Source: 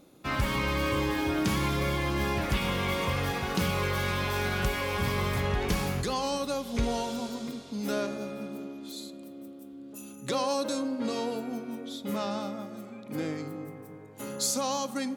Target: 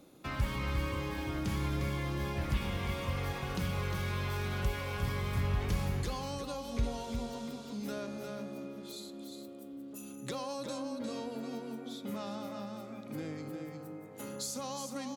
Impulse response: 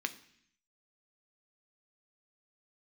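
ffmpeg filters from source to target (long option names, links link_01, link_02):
-filter_complex "[0:a]asplit=2[link_01][link_02];[link_02]aecho=0:1:354:0.447[link_03];[link_01][link_03]amix=inputs=2:normalize=0,acrossover=split=140[link_04][link_05];[link_05]acompressor=threshold=-42dB:ratio=2[link_06];[link_04][link_06]amix=inputs=2:normalize=0,volume=-1.5dB"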